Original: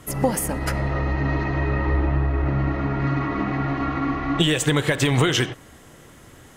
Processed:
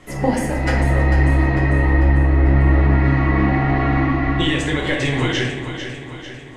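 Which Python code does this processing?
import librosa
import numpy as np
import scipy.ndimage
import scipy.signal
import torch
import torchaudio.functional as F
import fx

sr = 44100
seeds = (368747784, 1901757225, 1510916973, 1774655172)

y = fx.graphic_eq_31(x, sr, hz=(100, 160, 1250, 2000), db=(-12, -9, -6, 6))
y = fx.rider(y, sr, range_db=10, speed_s=0.5)
y = fx.air_absorb(y, sr, metres=79.0)
y = fx.echo_feedback(y, sr, ms=447, feedback_pct=53, wet_db=-9)
y = fx.room_shoebox(y, sr, seeds[0], volume_m3=140.0, walls='mixed', distance_m=0.98)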